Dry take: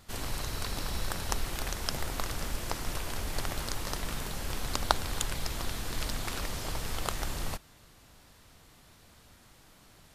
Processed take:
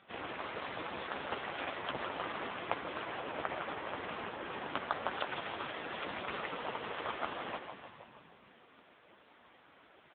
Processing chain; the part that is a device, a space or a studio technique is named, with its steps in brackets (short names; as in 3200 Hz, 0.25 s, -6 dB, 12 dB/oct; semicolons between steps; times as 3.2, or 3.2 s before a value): 3.03–5.09 bell 5100 Hz -5 dB 1.5 oct; frequency-shifting echo 0.157 s, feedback 59%, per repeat -35 Hz, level -7 dB; satellite phone (BPF 310–3200 Hz; echo 0.593 s -23 dB; gain +4.5 dB; AMR-NB 5.9 kbps 8000 Hz)